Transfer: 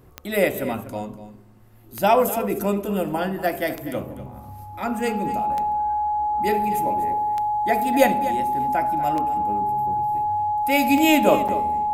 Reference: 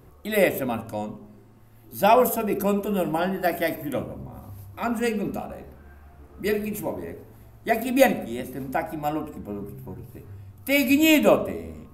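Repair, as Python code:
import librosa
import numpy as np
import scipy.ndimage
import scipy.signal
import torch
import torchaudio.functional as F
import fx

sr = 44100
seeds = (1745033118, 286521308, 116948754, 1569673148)

y = fx.fix_declick_ar(x, sr, threshold=10.0)
y = fx.notch(y, sr, hz=840.0, q=30.0)
y = fx.fix_interpolate(y, sr, at_s=(11.48,), length_ms=6.6)
y = fx.fix_echo_inverse(y, sr, delay_ms=244, level_db=-14.0)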